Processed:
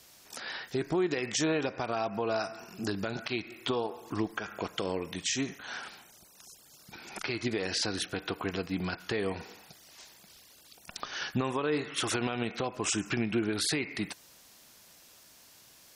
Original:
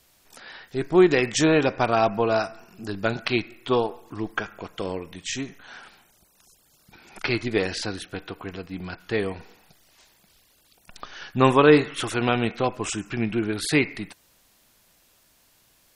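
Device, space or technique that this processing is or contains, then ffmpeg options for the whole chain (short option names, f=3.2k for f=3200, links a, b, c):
broadcast voice chain: -af "highpass=f=110:p=1,deesser=0.35,acompressor=threshold=-29dB:ratio=4,equalizer=f=5.6k:t=o:w=0.8:g=4.5,alimiter=limit=-22.5dB:level=0:latency=1:release=115,volume=3dB"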